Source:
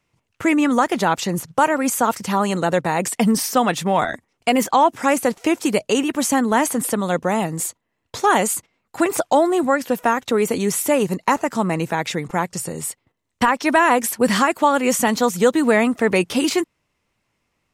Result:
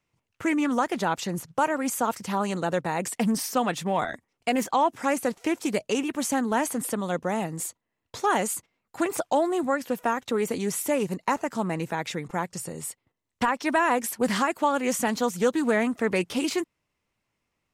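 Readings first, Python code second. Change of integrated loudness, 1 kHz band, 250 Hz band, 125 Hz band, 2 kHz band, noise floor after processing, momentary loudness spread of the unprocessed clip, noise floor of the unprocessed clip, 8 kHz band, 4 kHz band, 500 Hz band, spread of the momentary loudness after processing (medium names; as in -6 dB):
-7.5 dB, -7.5 dB, -7.5 dB, -7.5 dB, -7.5 dB, -81 dBFS, 7 LU, -73 dBFS, -8.0 dB, -8.0 dB, -7.5 dB, 7 LU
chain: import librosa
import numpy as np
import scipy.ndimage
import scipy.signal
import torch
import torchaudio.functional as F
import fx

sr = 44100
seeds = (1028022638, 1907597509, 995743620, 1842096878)

y = fx.doppler_dist(x, sr, depth_ms=0.14)
y = F.gain(torch.from_numpy(y), -7.5).numpy()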